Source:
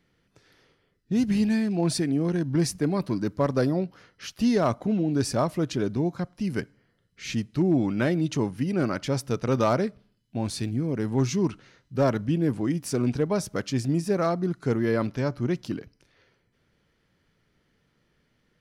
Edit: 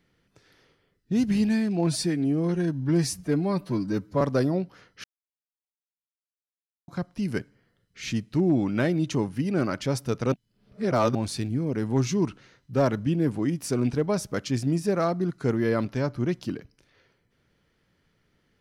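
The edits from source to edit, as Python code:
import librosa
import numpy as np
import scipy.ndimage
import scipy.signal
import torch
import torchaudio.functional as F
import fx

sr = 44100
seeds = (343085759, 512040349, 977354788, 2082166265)

y = fx.edit(x, sr, fx.stretch_span(start_s=1.87, length_s=1.56, factor=1.5),
    fx.silence(start_s=4.26, length_s=1.84),
    fx.reverse_span(start_s=9.54, length_s=0.83), tone=tone)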